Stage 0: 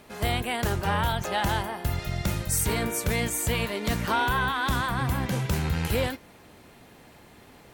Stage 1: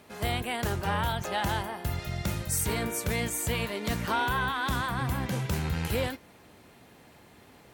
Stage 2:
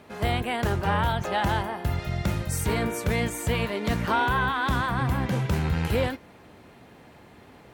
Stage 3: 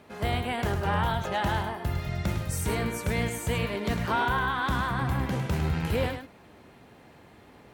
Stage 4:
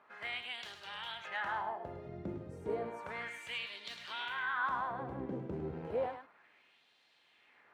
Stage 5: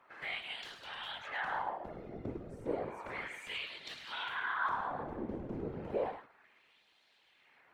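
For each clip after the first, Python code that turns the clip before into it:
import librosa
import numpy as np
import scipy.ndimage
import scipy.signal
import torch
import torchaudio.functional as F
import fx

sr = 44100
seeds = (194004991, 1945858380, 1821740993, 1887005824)

y1 = scipy.signal.sosfilt(scipy.signal.butter(2, 47.0, 'highpass', fs=sr, output='sos'), x)
y1 = F.gain(torch.from_numpy(y1), -3.0).numpy()
y2 = fx.high_shelf(y1, sr, hz=4200.0, db=-10.5)
y2 = F.gain(torch.from_numpy(y2), 5.0).numpy()
y3 = y2 + 10.0 ** (-8.0 / 20.0) * np.pad(y2, (int(104 * sr / 1000.0), 0))[:len(y2)]
y3 = F.gain(torch.from_numpy(y3), -3.0).numpy()
y4 = fx.wah_lfo(y3, sr, hz=0.32, low_hz=340.0, high_hz=3800.0, q=2.2)
y4 = F.gain(torch.from_numpy(y4), -2.0).numpy()
y5 = fx.whisperise(y4, sr, seeds[0])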